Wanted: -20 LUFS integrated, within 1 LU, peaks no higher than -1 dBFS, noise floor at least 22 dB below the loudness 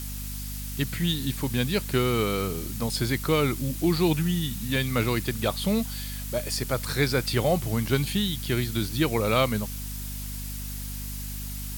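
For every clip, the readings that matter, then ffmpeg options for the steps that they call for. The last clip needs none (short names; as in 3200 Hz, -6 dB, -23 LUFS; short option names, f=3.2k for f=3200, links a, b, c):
hum 50 Hz; harmonics up to 250 Hz; hum level -33 dBFS; noise floor -34 dBFS; noise floor target -49 dBFS; loudness -27.0 LUFS; peak -9.5 dBFS; loudness target -20.0 LUFS
-> -af "bandreject=f=50:t=h:w=6,bandreject=f=100:t=h:w=6,bandreject=f=150:t=h:w=6,bandreject=f=200:t=h:w=6,bandreject=f=250:t=h:w=6"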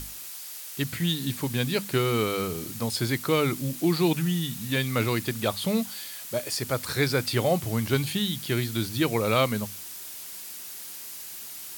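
hum none; noise floor -40 dBFS; noise floor target -50 dBFS
-> -af "afftdn=nr=10:nf=-40"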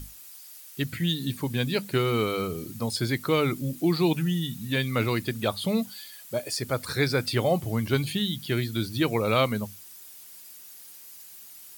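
noise floor -47 dBFS; noise floor target -49 dBFS
-> -af "afftdn=nr=6:nf=-47"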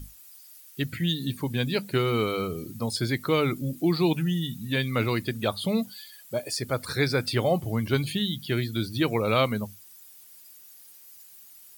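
noise floor -51 dBFS; loudness -27.0 LUFS; peak -10.0 dBFS; loudness target -20.0 LUFS
-> -af "volume=7dB"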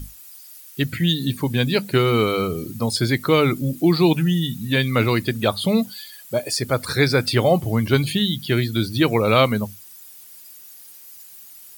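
loudness -20.0 LUFS; peak -3.0 dBFS; noise floor -44 dBFS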